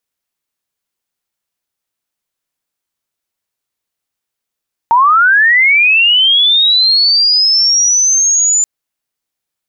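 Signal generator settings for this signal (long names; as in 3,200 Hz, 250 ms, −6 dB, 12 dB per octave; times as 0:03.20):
glide linear 900 Hz → 7,100 Hz −5 dBFS → −8 dBFS 3.73 s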